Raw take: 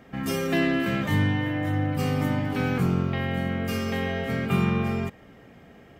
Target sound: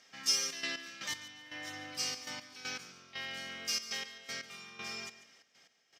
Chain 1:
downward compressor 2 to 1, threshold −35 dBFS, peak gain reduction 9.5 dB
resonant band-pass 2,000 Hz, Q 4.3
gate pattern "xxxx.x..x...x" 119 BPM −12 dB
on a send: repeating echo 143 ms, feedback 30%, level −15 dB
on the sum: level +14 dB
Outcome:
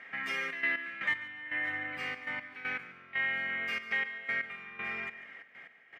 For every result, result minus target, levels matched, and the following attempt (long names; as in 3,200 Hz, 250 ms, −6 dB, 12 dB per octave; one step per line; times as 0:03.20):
4,000 Hz band −12.5 dB; downward compressor: peak gain reduction +9.5 dB
downward compressor 2 to 1, threshold −35 dBFS, peak gain reduction 9.5 dB
resonant band-pass 5,500 Hz, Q 4.3
gate pattern "xxxx.x..x...x" 119 BPM −12 dB
on a send: repeating echo 143 ms, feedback 30%, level −15 dB
on the sum: level +14 dB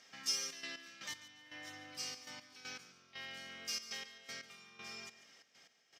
downward compressor: peak gain reduction +9.5 dB
resonant band-pass 5,500 Hz, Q 4.3
gate pattern "xxxx.x..x...x" 119 BPM −12 dB
on a send: repeating echo 143 ms, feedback 30%, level −15 dB
on the sum: level +14 dB